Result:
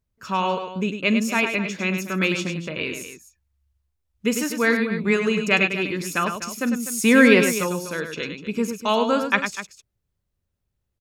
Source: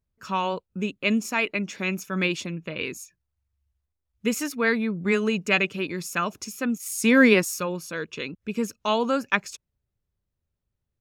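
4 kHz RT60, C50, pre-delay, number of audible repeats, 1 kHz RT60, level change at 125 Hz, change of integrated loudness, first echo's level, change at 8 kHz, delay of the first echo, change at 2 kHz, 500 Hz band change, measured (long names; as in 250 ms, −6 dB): no reverb audible, no reverb audible, no reverb audible, 3, no reverb audible, +3.5 dB, +3.5 dB, −17.5 dB, +3.5 dB, 43 ms, +3.5 dB, +3.5 dB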